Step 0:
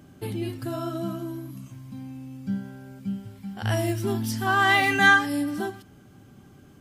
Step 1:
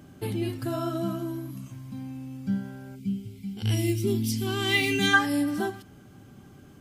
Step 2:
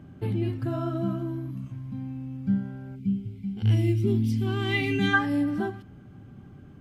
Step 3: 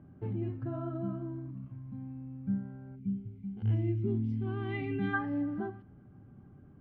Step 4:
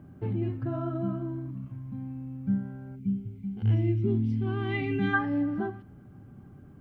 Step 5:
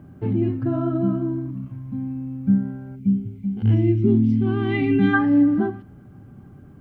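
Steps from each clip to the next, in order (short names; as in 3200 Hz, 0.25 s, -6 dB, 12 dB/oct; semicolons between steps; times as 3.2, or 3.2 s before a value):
spectral gain 2.96–5.14, 510–2000 Hz -16 dB; gain +1 dB
tone controls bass +7 dB, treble -15 dB; gain -2 dB
LPF 1500 Hz 12 dB/oct; gain -7.5 dB
high shelf 3000 Hz +7.5 dB; gain +5 dB
dynamic EQ 260 Hz, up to +8 dB, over -43 dBFS, Q 1.5; gain +5 dB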